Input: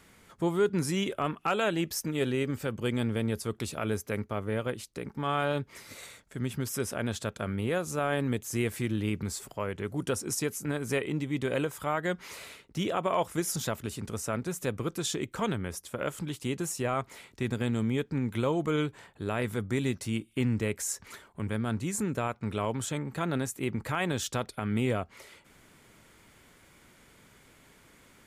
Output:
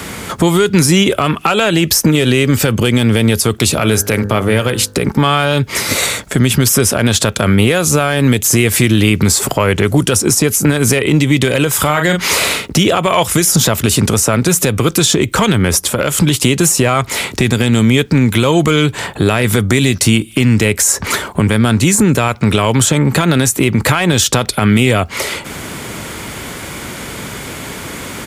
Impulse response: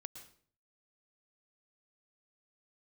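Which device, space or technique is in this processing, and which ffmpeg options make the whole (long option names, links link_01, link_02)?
mastering chain: -filter_complex "[0:a]asplit=3[link_01][link_02][link_03];[link_01]afade=type=out:start_time=11.76:duration=0.02[link_04];[link_02]asplit=2[link_05][link_06];[link_06]adelay=40,volume=-8dB[link_07];[link_05][link_07]amix=inputs=2:normalize=0,afade=type=in:start_time=11.76:duration=0.02,afade=type=out:start_time=12.65:duration=0.02[link_08];[link_03]afade=type=in:start_time=12.65:duration=0.02[link_09];[link_04][link_08][link_09]amix=inputs=3:normalize=0,highpass=50,equalizer=frequency=1800:width_type=o:width=0.77:gain=-2,acrossover=split=110|1800[link_10][link_11][link_12];[link_10]acompressor=threshold=-48dB:ratio=4[link_13];[link_11]acompressor=threshold=-39dB:ratio=4[link_14];[link_12]acompressor=threshold=-40dB:ratio=4[link_15];[link_13][link_14][link_15]amix=inputs=3:normalize=0,acompressor=threshold=-44dB:ratio=1.5,asoftclip=type=tanh:threshold=-28.5dB,alimiter=level_in=33.5dB:limit=-1dB:release=50:level=0:latency=1,asettb=1/sr,asplit=3[link_16][link_17][link_18];[link_16]atrim=end=3.654[link_19];[link_17]atrim=start=3.65:end=5.09,asetpts=PTS-STARTPTS,afade=type=in:duration=0.004:curve=qsin,afade=type=out:start_time=1.436:duration=0.004:curve=qsin,bandreject=frequency=50.84:width_type=h:width=4,bandreject=frequency=101.68:width_type=h:width=4,bandreject=frequency=152.52:width_type=h:width=4,bandreject=frequency=203.36:width_type=h:width=4,bandreject=frequency=254.2:width_type=h:width=4,bandreject=frequency=305.04:width_type=h:width=4,bandreject=frequency=355.88:width_type=h:width=4,bandreject=frequency=406.72:width_type=h:width=4,bandreject=frequency=457.56:width_type=h:width=4,bandreject=frequency=508.4:width_type=h:width=4,bandreject=frequency=559.24:width_type=h:width=4,bandreject=frequency=610.08:width_type=h:width=4,bandreject=frequency=660.92:width_type=h:width=4,bandreject=frequency=711.76:width_type=h:width=4,bandreject=frequency=762.6:width_type=h:width=4,bandreject=frequency=813.44:width_type=h:width=4,bandreject=frequency=864.28:width_type=h:width=4,bandreject=frequency=915.12:width_type=h:width=4,bandreject=frequency=965.96:width_type=h:width=4,bandreject=frequency=1016.8:width_type=h:width=4,bandreject=frequency=1067.64:width_type=h:width=4,bandreject=frequency=1118.48:width_type=h:width=4,bandreject=frequency=1169.32:width_type=h:width=4,bandreject=frequency=1220.16:width_type=h:width=4,bandreject=frequency=1271:width_type=h:width=4,bandreject=frequency=1321.84:width_type=h:width=4,bandreject=frequency=1372.68:width_type=h:width=4,bandreject=frequency=1423.52:width_type=h:width=4,bandreject=frequency=1474.36:width_type=h:width=4,bandreject=frequency=1525.2:width_type=h:width=4,bandreject=frequency=1576.04:width_type=h:width=4,bandreject=frequency=1626.88:width_type=h:width=4,bandreject=frequency=1677.72:width_type=h:width=4,bandreject=frequency=1728.56:width_type=h:width=4,bandreject=frequency=1779.4:width_type=h:width=4,bandreject=frequency=1830.24:width_type=h:width=4[link_20];[link_18]atrim=start=5.086[link_21];[link_19][link_20]acrossfade=duration=0.004:curve1=hsin:curve2=qsin[link_22];[link_22][link_21]acrossfade=duration=0.004:curve1=qsin:curve2=hsin,volume=-1dB"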